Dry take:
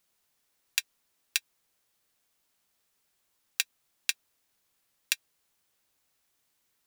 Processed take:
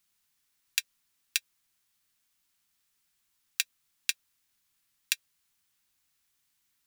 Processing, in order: bell 550 Hz -13 dB 1.3 oct; notches 60/120/180/240/300/360/420/480/540 Hz

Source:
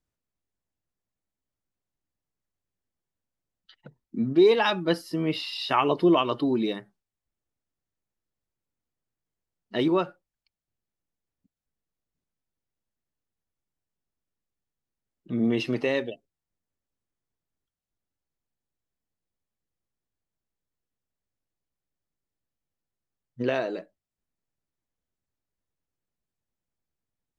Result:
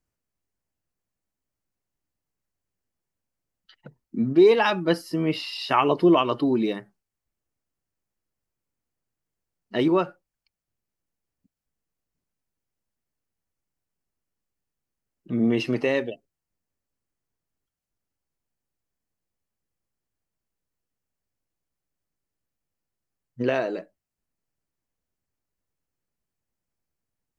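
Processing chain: bell 3600 Hz -6.5 dB 0.29 oct; gain +2.5 dB

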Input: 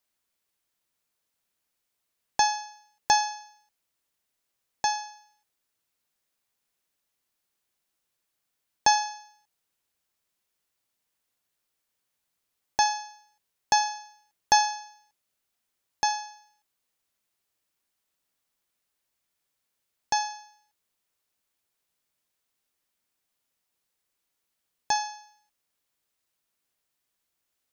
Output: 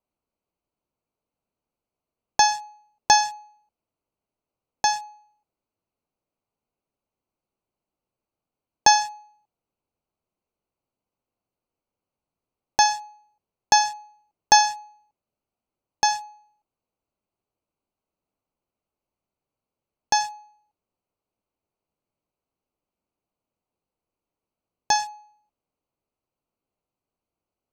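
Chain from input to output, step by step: Wiener smoothing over 25 samples; high shelf 6600 Hz +3.5 dB; gain +5 dB

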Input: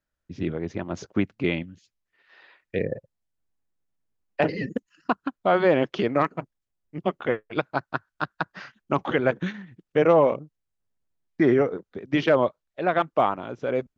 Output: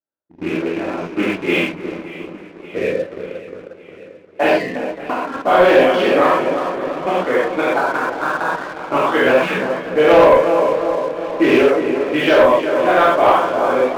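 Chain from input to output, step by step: rattling part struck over -26 dBFS, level -20 dBFS; HPF 310 Hz 12 dB/oct; on a send: darkening echo 0.357 s, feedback 60%, low-pass 1900 Hz, level -8 dB; on the sum: non-linear reverb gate 0.15 s flat, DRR -8 dB; low-pass opened by the level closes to 860 Hz, open at -9.5 dBFS; sample leveller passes 2; 4.58–5.34 compressor 4:1, threshold -15 dBFS, peak gain reduction 6.5 dB; flange 1.2 Hz, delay 8.7 ms, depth 5.3 ms, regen -85%; warbling echo 0.578 s, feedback 62%, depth 79 cents, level -16.5 dB

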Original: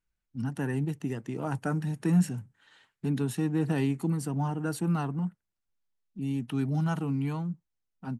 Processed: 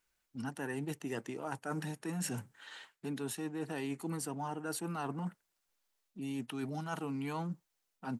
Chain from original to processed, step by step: tone controls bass -15 dB, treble +2 dB; reverse; compressor 12:1, threshold -44 dBFS, peak gain reduction 17 dB; reverse; gain +9 dB

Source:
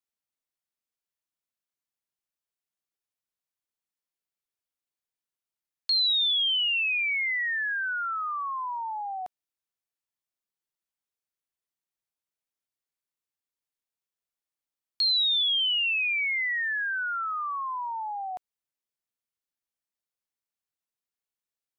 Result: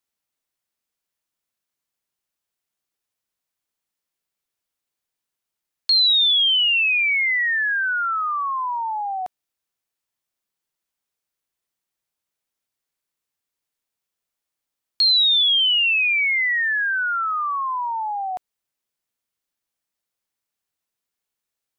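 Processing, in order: 5.91–8.2 low shelf 170 Hz +10 dB; gain +7.5 dB

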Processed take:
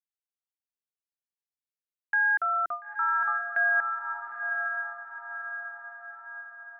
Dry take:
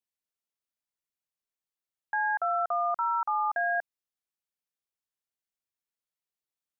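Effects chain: band shelf 680 Hz -15 dB; gate with hold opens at -32 dBFS; on a send: diffused feedback echo 0.931 s, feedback 51%, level -5 dB; on the sum: gain +7.5 dB

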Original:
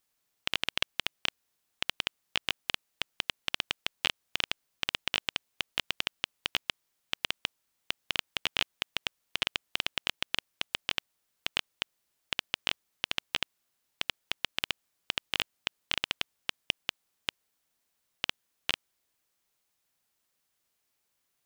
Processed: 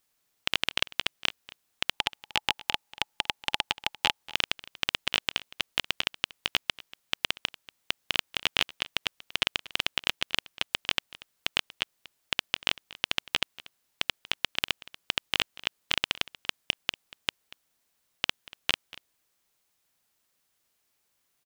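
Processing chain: 1.92–4.24 bell 850 Hz +13.5 dB 0.25 oct; echo 0.237 s -19.5 dB; gain +3.5 dB

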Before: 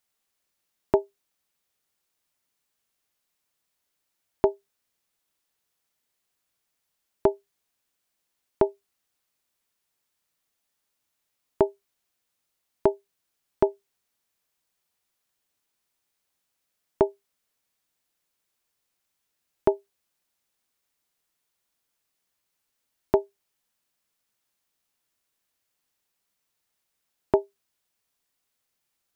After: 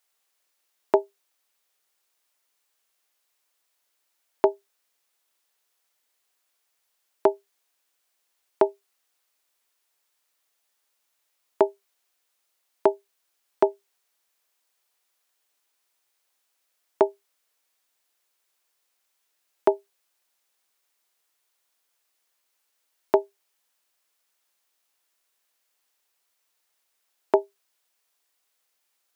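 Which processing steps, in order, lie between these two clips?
HPF 430 Hz 12 dB/oct; gain +4.5 dB

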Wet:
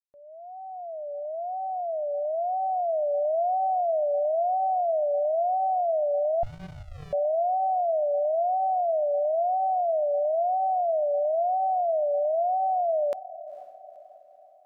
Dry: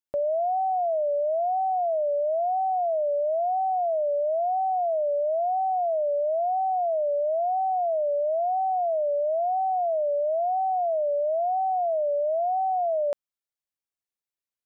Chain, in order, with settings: opening faded in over 3.35 s; diffused feedback echo 0.477 s, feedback 45%, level -16 dB; 6.43–7.13 running maximum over 65 samples

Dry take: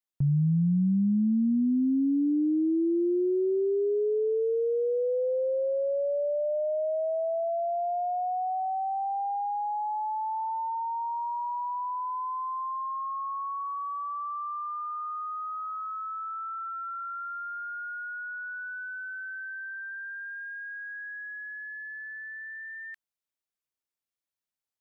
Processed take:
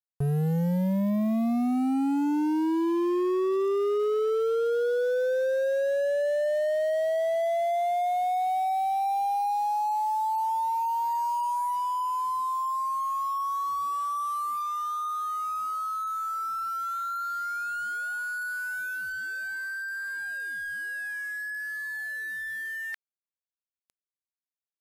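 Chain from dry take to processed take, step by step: reverse; upward compressor, threshold -36 dBFS; reverse; requantised 8-bit, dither none; downsampling 32000 Hz; overloaded stage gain 28 dB; gain +4 dB

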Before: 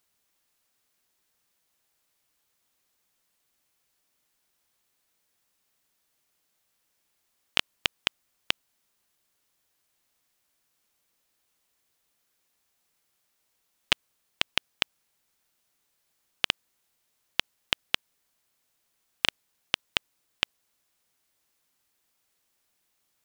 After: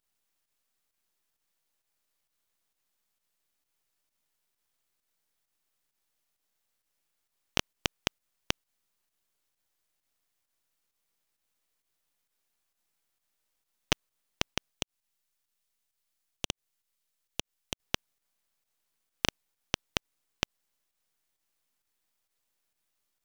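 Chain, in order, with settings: 14.71–17.8 passive tone stack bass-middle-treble 10-0-10; half-wave rectifier; pump 132 bpm, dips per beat 1, -8 dB, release 98 ms; gain -2 dB

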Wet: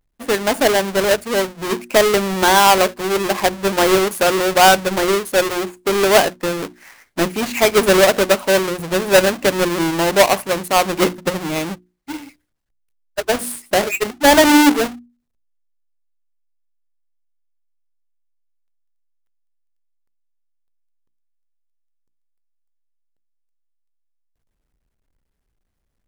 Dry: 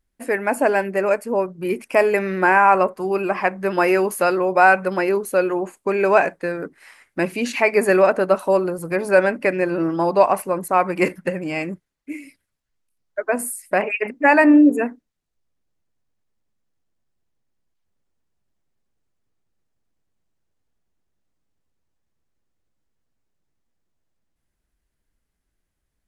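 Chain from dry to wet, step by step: half-waves squared off; notches 60/120/180/240/300/360 Hz; gain -1 dB

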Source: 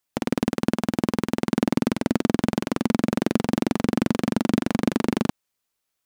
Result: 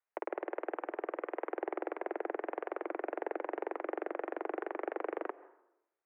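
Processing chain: soft clip -13 dBFS, distortion -14 dB; mistuned SSB +93 Hz 350–2100 Hz; reverb RT60 0.85 s, pre-delay 0.123 s, DRR 18 dB; gain -5.5 dB

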